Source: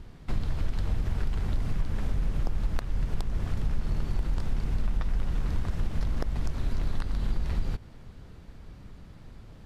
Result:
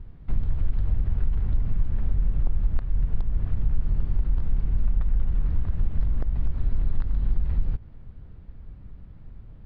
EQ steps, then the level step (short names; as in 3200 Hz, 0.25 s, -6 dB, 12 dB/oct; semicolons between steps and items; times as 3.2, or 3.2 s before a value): air absorption 310 m; low shelf 150 Hz +11.5 dB; -5.5 dB